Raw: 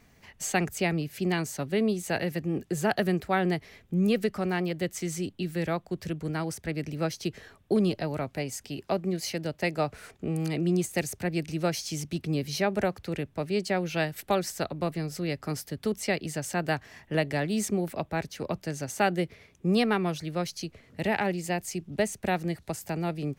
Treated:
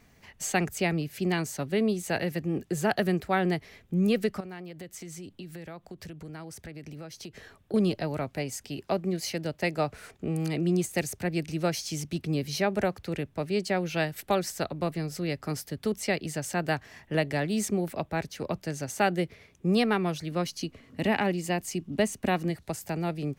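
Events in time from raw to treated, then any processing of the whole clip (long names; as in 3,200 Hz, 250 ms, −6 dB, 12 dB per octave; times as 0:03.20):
0:04.40–0:07.74: downward compressor 5 to 1, threshold −39 dBFS
0:20.31–0:22.50: hollow resonant body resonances 260/1,100/2,900 Hz, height 9 dB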